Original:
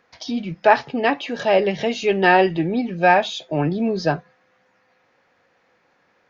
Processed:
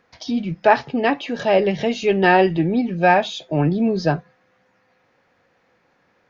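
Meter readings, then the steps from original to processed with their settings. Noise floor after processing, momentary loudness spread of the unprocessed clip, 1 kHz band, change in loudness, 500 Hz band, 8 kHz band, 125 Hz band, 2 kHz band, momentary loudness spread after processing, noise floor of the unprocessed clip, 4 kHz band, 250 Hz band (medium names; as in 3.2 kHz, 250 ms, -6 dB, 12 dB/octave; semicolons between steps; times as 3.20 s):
-63 dBFS, 10 LU, -0.5 dB, +0.5 dB, +0.5 dB, no reading, +4.0 dB, -1.0 dB, 9 LU, -63 dBFS, -1.0 dB, +2.5 dB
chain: bass shelf 280 Hz +6.5 dB; trim -1 dB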